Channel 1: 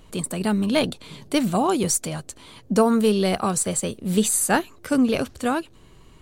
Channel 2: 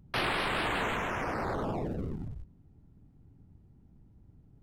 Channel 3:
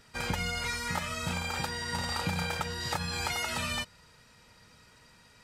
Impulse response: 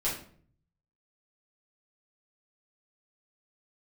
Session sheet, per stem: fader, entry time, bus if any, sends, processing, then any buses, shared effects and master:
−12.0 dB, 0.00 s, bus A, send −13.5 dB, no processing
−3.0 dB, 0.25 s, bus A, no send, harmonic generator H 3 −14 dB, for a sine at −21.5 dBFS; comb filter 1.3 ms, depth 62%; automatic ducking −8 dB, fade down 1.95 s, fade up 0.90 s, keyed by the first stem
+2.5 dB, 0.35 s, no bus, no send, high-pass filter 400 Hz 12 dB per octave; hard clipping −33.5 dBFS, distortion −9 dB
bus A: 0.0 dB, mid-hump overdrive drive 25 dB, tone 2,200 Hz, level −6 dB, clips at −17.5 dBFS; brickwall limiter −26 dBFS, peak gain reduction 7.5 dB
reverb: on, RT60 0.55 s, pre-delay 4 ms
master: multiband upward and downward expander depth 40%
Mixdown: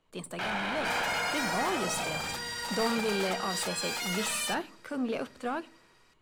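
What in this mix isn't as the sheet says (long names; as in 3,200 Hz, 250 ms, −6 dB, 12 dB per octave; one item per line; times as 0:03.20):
stem 1 −12.0 dB → −20.0 dB
stem 3: entry 0.35 s → 0.70 s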